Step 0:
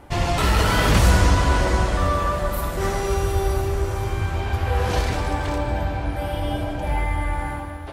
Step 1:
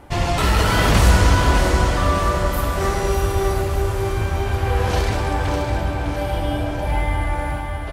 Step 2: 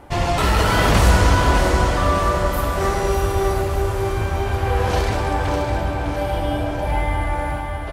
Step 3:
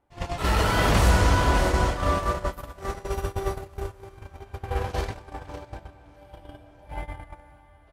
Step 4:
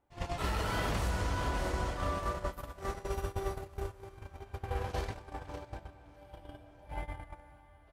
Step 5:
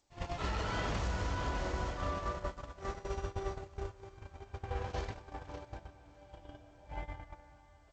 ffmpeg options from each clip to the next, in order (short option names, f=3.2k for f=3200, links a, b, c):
-af "aecho=1:1:605|1210|1815|2420|3025|3630:0.398|0.215|0.116|0.0627|0.0339|0.0183,volume=1.5dB"
-af "equalizer=f=710:t=o:w=2.3:g=3,volume=-1dB"
-af "agate=range=-23dB:threshold=-17dB:ratio=16:detection=peak,volume=-5dB"
-af "acompressor=threshold=-25dB:ratio=5,volume=-5dB"
-af "volume=-2.5dB" -ar 16000 -c:a g722